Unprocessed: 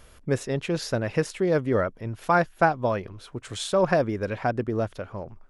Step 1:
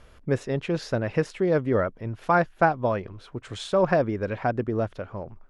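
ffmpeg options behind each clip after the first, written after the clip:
ffmpeg -i in.wav -af "aemphasis=mode=reproduction:type=50fm" out.wav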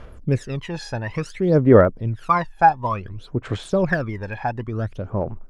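ffmpeg -i in.wav -af "aphaser=in_gain=1:out_gain=1:delay=1.2:decay=0.78:speed=0.57:type=sinusoidal,volume=-1dB" out.wav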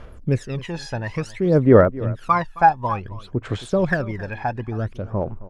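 ffmpeg -i in.wav -af "aecho=1:1:268:0.119" out.wav

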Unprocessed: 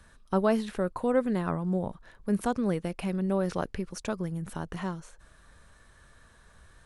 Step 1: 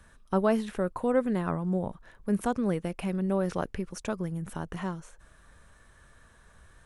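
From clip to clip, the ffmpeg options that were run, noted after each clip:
ffmpeg -i in.wav -af "equalizer=frequency=4400:width=2.5:gain=-4.5" out.wav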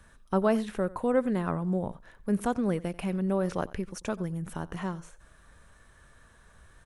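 ffmpeg -i in.wav -af "aecho=1:1:90:0.1" out.wav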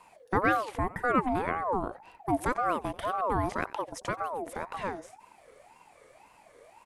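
ffmpeg -i in.wav -af "aeval=exprs='val(0)*sin(2*PI*730*n/s+730*0.35/1.9*sin(2*PI*1.9*n/s))':channel_layout=same,volume=2dB" out.wav

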